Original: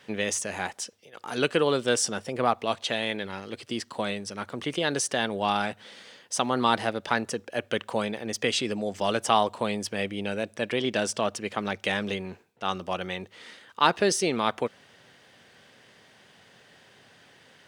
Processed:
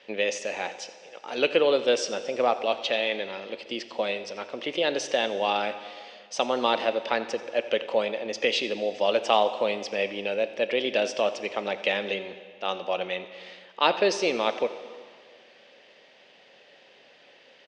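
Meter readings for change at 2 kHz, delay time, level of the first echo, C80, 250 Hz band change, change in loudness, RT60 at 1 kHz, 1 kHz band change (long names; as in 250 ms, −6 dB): +0.5 dB, 88 ms, −17.5 dB, 12.0 dB, −4.5 dB, +1.0 dB, 2.0 s, −1.0 dB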